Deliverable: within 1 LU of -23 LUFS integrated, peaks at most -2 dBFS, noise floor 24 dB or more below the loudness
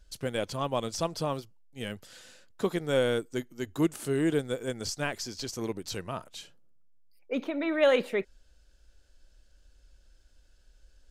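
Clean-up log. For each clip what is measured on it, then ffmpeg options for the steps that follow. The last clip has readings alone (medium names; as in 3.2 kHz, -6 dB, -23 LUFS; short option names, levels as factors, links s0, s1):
loudness -31.0 LUFS; peak level -12.5 dBFS; loudness target -23.0 LUFS
-> -af "volume=2.51"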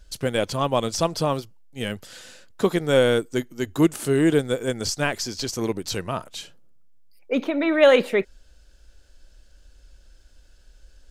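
loudness -23.0 LUFS; peak level -4.5 dBFS; noise floor -53 dBFS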